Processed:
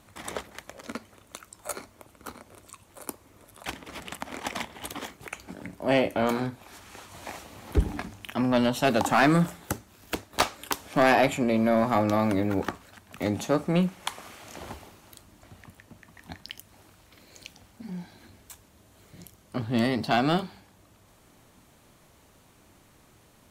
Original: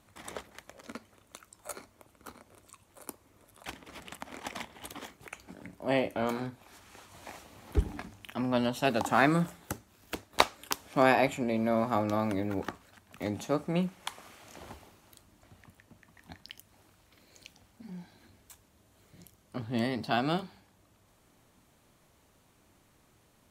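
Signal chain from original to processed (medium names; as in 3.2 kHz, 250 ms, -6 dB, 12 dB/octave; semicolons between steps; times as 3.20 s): saturation -19.5 dBFS, distortion -11 dB; trim +7 dB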